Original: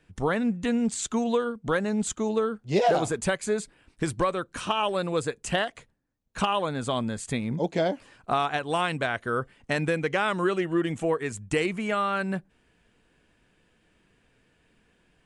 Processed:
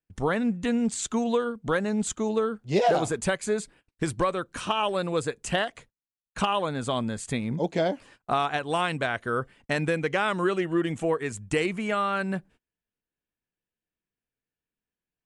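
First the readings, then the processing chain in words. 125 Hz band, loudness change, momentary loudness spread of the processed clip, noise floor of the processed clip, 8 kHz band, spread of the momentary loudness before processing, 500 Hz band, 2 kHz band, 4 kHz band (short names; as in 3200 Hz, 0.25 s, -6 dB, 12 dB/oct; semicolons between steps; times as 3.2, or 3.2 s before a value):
0.0 dB, 0.0 dB, 5 LU, under -85 dBFS, 0.0 dB, 5 LU, 0.0 dB, 0.0 dB, 0.0 dB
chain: gate -51 dBFS, range -29 dB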